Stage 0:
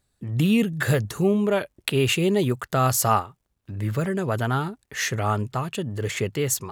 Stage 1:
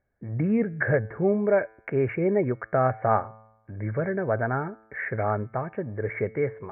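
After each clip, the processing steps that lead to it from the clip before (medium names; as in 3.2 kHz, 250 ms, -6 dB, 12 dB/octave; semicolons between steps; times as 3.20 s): rippled Chebyshev low-pass 2.3 kHz, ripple 9 dB; feedback comb 110 Hz, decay 0.9 s, harmonics all, mix 40%; trim +7.5 dB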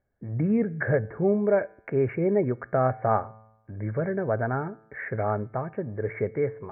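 treble shelf 2.3 kHz -10 dB; on a send at -22.5 dB: reverberation RT60 0.40 s, pre-delay 4 ms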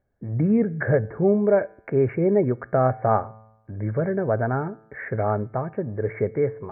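treble shelf 2.3 kHz -9 dB; trim +4 dB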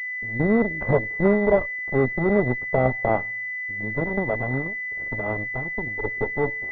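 Chebyshev shaper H 7 -20 dB, 8 -16 dB, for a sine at -6.5 dBFS; class-D stage that switches slowly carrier 2 kHz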